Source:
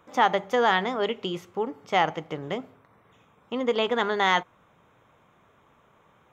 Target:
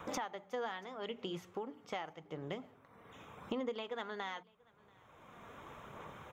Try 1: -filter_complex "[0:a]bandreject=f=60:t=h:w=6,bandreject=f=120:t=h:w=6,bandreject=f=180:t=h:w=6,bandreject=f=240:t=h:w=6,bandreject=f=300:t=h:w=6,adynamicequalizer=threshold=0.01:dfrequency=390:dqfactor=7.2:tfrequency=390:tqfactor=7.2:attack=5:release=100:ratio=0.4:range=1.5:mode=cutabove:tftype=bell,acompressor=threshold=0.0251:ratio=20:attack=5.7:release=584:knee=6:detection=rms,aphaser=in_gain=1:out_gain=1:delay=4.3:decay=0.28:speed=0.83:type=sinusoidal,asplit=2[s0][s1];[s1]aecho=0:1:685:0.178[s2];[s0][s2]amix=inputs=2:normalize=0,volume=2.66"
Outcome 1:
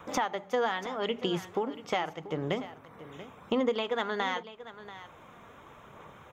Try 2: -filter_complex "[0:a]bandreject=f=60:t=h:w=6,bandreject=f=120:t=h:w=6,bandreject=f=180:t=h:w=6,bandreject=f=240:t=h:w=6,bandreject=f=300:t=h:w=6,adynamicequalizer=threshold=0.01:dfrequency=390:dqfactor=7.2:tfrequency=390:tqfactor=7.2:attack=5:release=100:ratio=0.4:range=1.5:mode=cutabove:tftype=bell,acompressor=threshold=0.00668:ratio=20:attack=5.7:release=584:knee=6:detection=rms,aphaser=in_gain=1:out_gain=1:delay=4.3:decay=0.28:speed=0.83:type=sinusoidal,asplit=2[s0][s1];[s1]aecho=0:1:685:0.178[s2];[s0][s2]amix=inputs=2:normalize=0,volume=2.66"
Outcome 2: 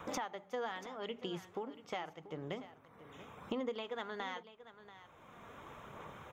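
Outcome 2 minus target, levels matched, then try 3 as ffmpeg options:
echo-to-direct +12 dB
-filter_complex "[0:a]bandreject=f=60:t=h:w=6,bandreject=f=120:t=h:w=6,bandreject=f=180:t=h:w=6,bandreject=f=240:t=h:w=6,bandreject=f=300:t=h:w=6,adynamicequalizer=threshold=0.01:dfrequency=390:dqfactor=7.2:tfrequency=390:tqfactor=7.2:attack=5:release=100:ratio=0.4:range=1.5:mode=cutabove:tftype=bell,acompressor=threshold=0.00668:ratio=20:attack=5.7:release=584:knee=6:detection=rms,aphaser=in_gain=1:out_gain=1:delay=4.3:decay=0.28:speed=0.83:type=sinusoidal,asplit=2[s0][s1];[s1]aecho=0:1:685:0.0447[s2];[s0][s2]amix=inputs=2:normalize=0,volume=2.66"

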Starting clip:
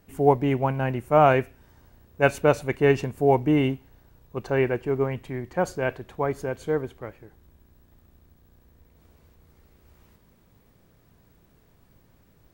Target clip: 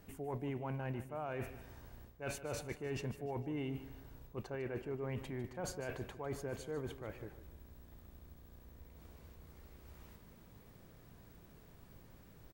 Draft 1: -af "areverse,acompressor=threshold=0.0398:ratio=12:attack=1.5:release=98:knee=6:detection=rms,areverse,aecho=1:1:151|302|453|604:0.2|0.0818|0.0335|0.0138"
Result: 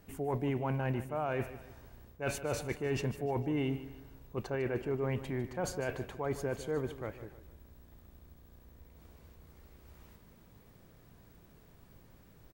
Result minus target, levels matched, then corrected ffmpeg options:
compression: peak gain reduction -7.5 dB
-af "areverse,acompressor=threshold=0.0158:ratio=12:attack=1.5:release=98:knee=6:detection=rms,areverse,aecho=1:1:151|302|453|604:0.2|0.0818|0.0335|0.0138"

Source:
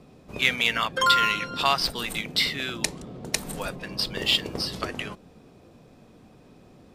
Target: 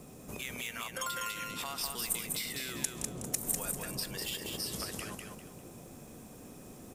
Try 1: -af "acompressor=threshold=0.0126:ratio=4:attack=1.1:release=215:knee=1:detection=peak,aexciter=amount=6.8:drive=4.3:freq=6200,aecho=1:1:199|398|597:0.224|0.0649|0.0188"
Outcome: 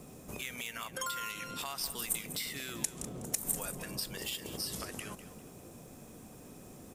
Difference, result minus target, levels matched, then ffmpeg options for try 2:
echo-to-direct -9 dB
-af "acompressor=threshold=0.0126:ratio=4:attack=1.1:release=215:knee=1:detection=peak,aexciter=amount=6.8:drive=4.3:freq=6200,aecho=1:1:199|398|597|796:0.631|0.183|0.0531|0.0154"

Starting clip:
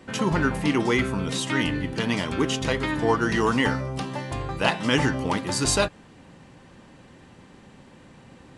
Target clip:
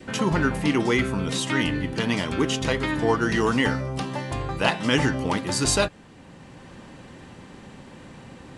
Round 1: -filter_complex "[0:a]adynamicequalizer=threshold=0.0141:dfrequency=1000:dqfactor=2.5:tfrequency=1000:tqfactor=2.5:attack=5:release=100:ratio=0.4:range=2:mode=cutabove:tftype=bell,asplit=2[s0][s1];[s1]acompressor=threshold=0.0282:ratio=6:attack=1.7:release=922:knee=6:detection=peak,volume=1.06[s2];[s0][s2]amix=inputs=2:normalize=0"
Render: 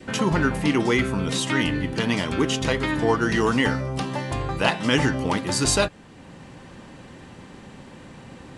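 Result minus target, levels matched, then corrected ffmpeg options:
compression: peak gain reduction -8.5 dB
-filter_complex "[0:a]adynamicequalizer=threshold=0.0141:dfrequency=1000:dqfactor=2.5:tfrequency=1000:tqfactor=2.5:attack=5:release=100:ratio=0.4:range=2:mode=cutabove:tftype=bell,asplit=2[s0][s1];[s1]acompressor=threshold=0.00891:ratio=6:attack=1.7:release=922:knee=6:detection=peak,volume=1.06[s2];[s0][s2]amix=inputs=2:normalize=0"

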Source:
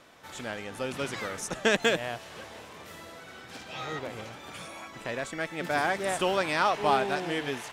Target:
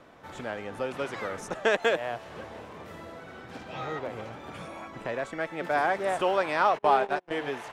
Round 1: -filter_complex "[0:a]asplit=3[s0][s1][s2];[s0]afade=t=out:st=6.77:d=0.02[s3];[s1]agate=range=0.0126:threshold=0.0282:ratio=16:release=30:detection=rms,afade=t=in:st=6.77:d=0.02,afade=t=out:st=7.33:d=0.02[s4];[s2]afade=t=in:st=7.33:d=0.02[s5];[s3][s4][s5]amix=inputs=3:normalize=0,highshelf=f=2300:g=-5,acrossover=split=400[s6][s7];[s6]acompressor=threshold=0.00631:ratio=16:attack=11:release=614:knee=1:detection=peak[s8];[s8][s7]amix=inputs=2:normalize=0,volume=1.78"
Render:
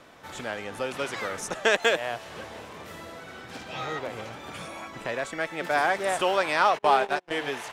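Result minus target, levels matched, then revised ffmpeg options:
4 kHz band +5.0 dB
-filter_complex "[0:a]asplit=3[s0][s1][s2];[s0]afade=t=out:st=6.77:d=0.02[s3];[s1]agate=range=0.0126:threshold=0.0282:ratio=16:release=30:detection=rms,afade=t=in:st=6.77:d=0.02,afade=t=out:st=7.33:d=0.02[s4];[s2]afade=t=in:st=7.33:d=0.02[s5];[s3][s4][s5]amix=inputs=3:normalize=0,highshelf=f=2300:g=-15.5,acrossover=split=400[s6][s7];[s6]acompressor=threshold=0.00631:ratio=16:attack=11:release=614:knee=1:detection=peak[s8];[s8][s7]amix=inputs=2:normalize=0,volume=1.78"

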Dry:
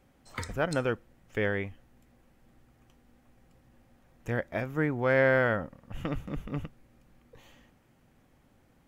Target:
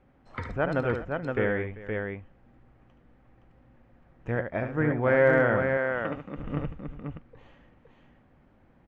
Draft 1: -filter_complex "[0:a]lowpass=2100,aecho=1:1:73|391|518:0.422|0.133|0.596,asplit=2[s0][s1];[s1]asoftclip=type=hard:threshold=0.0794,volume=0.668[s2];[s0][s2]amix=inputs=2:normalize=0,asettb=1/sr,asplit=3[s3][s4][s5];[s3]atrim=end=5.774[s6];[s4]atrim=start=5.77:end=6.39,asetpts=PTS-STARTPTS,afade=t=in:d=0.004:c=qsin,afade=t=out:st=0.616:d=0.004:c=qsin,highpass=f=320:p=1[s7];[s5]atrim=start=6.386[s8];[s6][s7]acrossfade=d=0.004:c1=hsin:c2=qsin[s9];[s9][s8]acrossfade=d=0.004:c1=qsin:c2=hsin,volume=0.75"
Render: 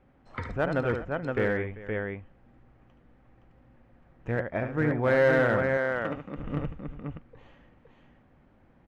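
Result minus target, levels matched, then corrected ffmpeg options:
hard clipper: distortion +30 dB
-filter_complex "[0:a]lowpass=2100,aecho=1:1:73|391|518:0.422|0.133|0.596,asplit=2[s0][s1];[s1]asoftclip=type=hard:threshold=0.2,volume=0.668[s2];[s0][s2]amix=inputs=2:normalize=0,asettb=1/sr,asplit=3[s3][s4][s5];[s3]atrim=end=5.774[s6];[s4]atrim=start=5.77:end=6.39,asetpts=PTS-STARTPTS,afade=t=in:d=0.004:c=qsin,afade=t=out:st=0.616:d=0.004:c=qsin,highpass=f=320:p=1[s7];[s5]atrim=start=6.386[s8];[s6][s7]acrossfade=d=0.004:c1=hsin:c2=qsin[s9];[s9][s8]acrossfade=d=0.004:c1=qsin:c2=hsin,volume=0.75"

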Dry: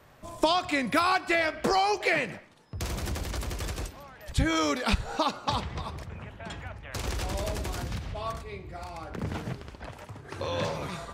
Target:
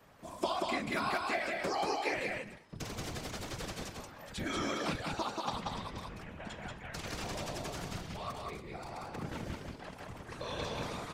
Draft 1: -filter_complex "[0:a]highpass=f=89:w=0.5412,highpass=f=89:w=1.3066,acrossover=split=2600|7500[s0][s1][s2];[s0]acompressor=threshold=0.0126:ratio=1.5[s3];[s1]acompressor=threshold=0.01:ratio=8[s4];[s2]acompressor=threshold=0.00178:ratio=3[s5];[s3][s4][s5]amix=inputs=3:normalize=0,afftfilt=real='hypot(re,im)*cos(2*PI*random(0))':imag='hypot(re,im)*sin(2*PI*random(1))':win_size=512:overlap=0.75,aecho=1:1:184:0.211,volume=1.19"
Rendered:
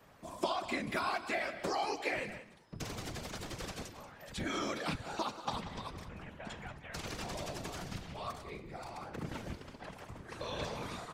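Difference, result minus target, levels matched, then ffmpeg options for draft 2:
echo-to-direct -11 dB
-filter_complex "[0:a]highpass=f=89:w=0.5412,highpass=f=89:w=1.3066,acrossover=split=2600|7500[s0][s1][s2];[s0]acompressor=threshold=0.0126:ratio=1.5[s3];[s1]acompressor=threshold=0.01:ratio=8[s4];[s2]acompressor=threshold=0.00178:ratio=3[s5];[s3][s4][s5]amix=inputs=3:normalize=0,afftfilt=real='hypot(re,im)*cos(2*PI*random(0))':imag='hypot(re,im)*sin(2*PI*random(1))':win_size=512:overlap=0.75,aecho=1:1:184:0.75,volume=1.19"

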